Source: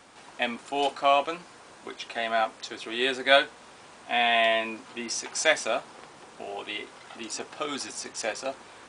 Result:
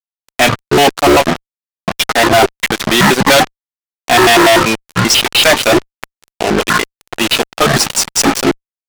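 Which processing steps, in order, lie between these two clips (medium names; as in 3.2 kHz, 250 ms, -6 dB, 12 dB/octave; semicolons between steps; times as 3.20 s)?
pitch shift switched off and on -11.5 st, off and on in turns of 97 ms; transient shaper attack 0 dB, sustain -4 dB; fuzz box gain 40 dB, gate -38 dBFS; trim +7.5 dB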